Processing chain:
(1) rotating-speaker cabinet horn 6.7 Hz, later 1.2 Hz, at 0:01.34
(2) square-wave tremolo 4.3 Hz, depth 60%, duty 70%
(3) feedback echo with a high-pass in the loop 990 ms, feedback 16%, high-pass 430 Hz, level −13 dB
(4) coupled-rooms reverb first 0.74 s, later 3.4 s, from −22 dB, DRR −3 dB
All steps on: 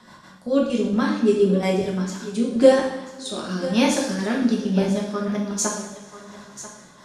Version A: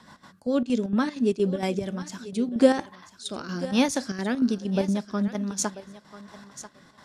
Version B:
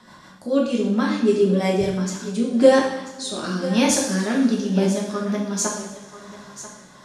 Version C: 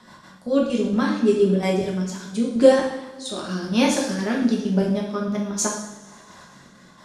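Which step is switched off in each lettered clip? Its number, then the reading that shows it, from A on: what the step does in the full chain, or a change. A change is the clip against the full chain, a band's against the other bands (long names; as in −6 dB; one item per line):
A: 4, change in crest factor +1.5 dB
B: 2, 8 kHz band +2.0 dB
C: 3, change in momentary loudness spread −8 LU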